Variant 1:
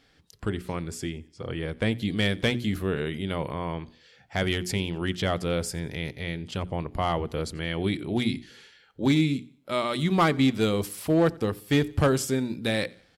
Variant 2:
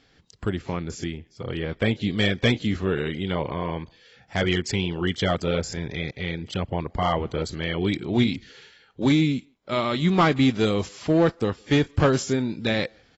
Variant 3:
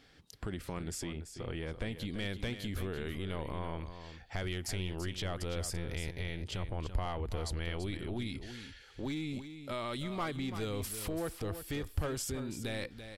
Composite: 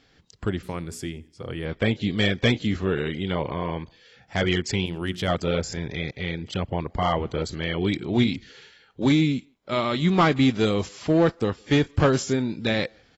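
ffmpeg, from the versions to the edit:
-filter_complex "[0:a]asplit=2[a][b];[1:a]asplit=3[c][d][e];[c]atrim=end=0.632[f];[a]atrim=start=0.628:end=1.652[g];[d]atrim=start=1.648:end=4.862[h];[b]atrim=start=4.858:end=5.282[i];[e]atrim=start=5.278[j];[f][g]acrossfade=d=0.004:c1=hsin:c2=hsin[k];[k][h]acrossfade=d=0.004:c1=hsin:c2=hsin[l];[l][i]acrossfade=d=0.004:c1=hsin:c2=hsin[m];[m][j]acrossfade=d=0.004:c1=hsin:c2=hsin"

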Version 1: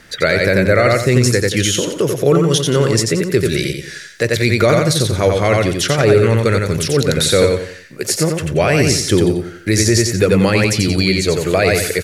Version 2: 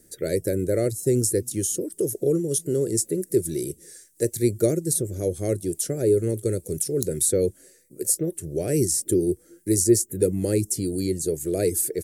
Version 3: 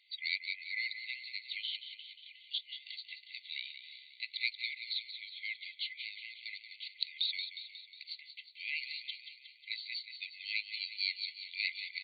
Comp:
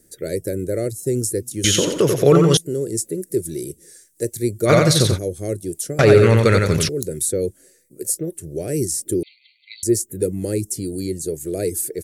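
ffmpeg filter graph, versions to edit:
-filter_complex "[0:a]asplit=3[a][b][c];[1:a]asplit=5[d][e][f][g][h];[d]atrim=end=1.642[i];[a]atrim=start=1.638:end=2.572[j];[e]atrim=start=2.568:end=4.71[k];[b]atrim=start=4.65:end=5.19[l];[f]atrim=start=5.13:end=5.992[m];[c]atrim=start=5.988:end=6.892[n];[g]atrim=start=6.888:end=9.232[o];[2:a]atrim=start=9.228:end=9.832[p];[h]atrim=start=9.828[q];[i][j]acrossfade=d=0.004:c1=hsin:c2=hsin[r];[r][k]acrossfade=d=0.004:c1=hsin:c2=hsin[s];[s][l]acrossfade=d=0.06:c1=tri:c2=tri[t];[t][m]acrossfade=d=0.06:c1=tri:c2=tri[u];[u][n]acrossfade=d=0.004:c1=hsin:c2=hsin[v];[v][o]acrossfade=d=0.004:c1=hsin:c2=hsin[w];[w][p]acrossfade=d=0.004:c1=hsin:c2=hsin[x];[x][q]acrossfade=d=0.004:c1=hsin:c2=hsin"

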